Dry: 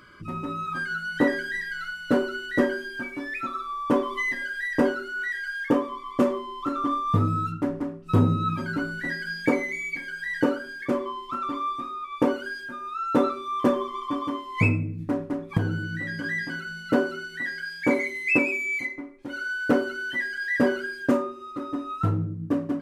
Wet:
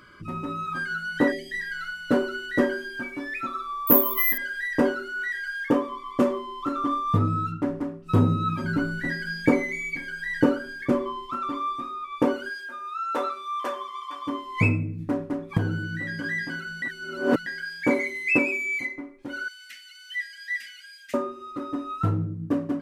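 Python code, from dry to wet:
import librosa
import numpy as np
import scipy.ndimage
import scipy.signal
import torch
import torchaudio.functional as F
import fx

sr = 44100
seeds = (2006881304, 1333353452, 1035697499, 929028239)

y = fx.spec_erase(x, sr, start_s=1.32, length_s=0.28, low_hz=780.0, high_hz=1700.0)
y = fx.resample_bad(y, sr, factor=3, down='none', up='zero_stuff', at=(3.87, 4.38))
y = fx.high_shelf(y, sr, hz=fx.line((7.17, 5900.0), (7.67, 8500.0)), db=-7.5, at=(7.17, 7.67), fade=0.02)
y = fx.low_shelf(y, sr, hz=200.0, db=9.5, at=(8.64, 11.26))
y = fx.highpass(y, sr, hz=fx.line((12.49, 450.0), (14.26, 1200.0)), slope=12, at=(12.49, 14.26), fade=0.02)
y = fx.ellip_highpass(y, sr, hz=2000.0, order=4, stop_db=50, at=(19.48, 21.14))
y = fx.edit(y, sr, fx.reverse_span(start_s=16.82, length_s=0.64), tone=tone)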